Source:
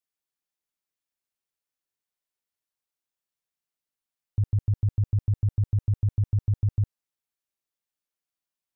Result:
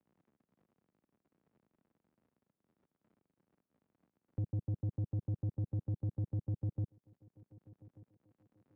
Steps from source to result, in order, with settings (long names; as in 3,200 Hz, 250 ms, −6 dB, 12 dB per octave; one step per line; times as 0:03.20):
mu-law and A-law mismatch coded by mu
surface crackle 83 per second −52 dBFS
resonant band-pass 200 Hz, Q 1.3
soft clipping −31.5 dBFS, distortion −13 dB
feedback echo with a high-pass in the loop 1,187 ms, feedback 30%, high-pass 210 Hz, level −24 dB
multiband upward and downward compressor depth 40%